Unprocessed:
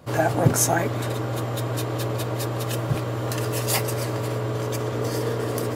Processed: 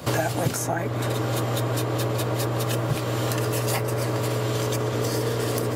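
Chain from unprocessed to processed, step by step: three bands compressed up and down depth 100%

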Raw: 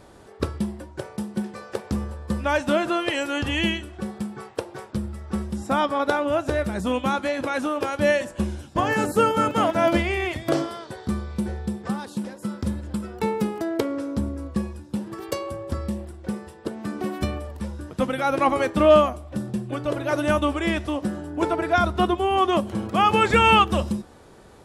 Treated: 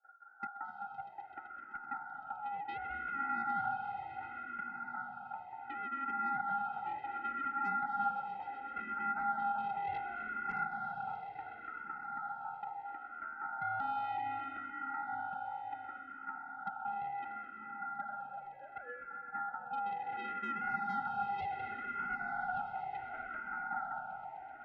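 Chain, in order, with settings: 17.50–19.10 s: formants replaced by sine waves; gate with hold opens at -39 dBFS; in parallel at +3 dB: compression, threshold -33 dBFS, peak gain reduction 23 dB; on the sum: Butterworth band-pass 290 Hz, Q 5.2; saturation -35 dBFS, distortion -6 dB; ring modulator 1.1 kHz; echo with a slow build-up 128 ms, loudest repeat 5, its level -15.5 dB; on a send at -5 dB: reverberation RT60 5.2 s, pre-delay 210 ms; on the sum: barber-pole phaser -0.69 Hz; trim +4 dB

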